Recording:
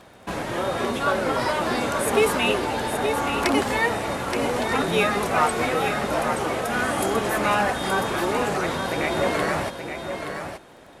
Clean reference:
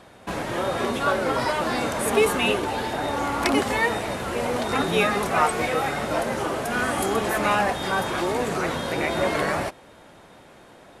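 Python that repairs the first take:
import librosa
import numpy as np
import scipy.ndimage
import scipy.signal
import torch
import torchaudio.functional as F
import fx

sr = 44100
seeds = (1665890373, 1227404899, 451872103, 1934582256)

y = fx.fix_declip(x, sr, threshold_db=-10.0)
y = fx.fix_declick_ar(y, sr, threshold=6.5)
y = fx.fix_echo_inverse(y, sr, delay_ms=874, level_db=-7.5)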